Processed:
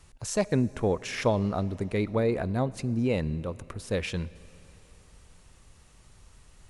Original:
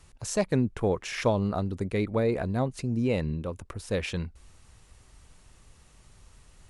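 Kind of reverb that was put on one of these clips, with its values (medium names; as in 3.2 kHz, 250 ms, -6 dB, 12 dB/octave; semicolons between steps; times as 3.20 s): algorithmic reverb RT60 3.4 s, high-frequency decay 1×, pre-delay 10 ms, DRR 19.5 dB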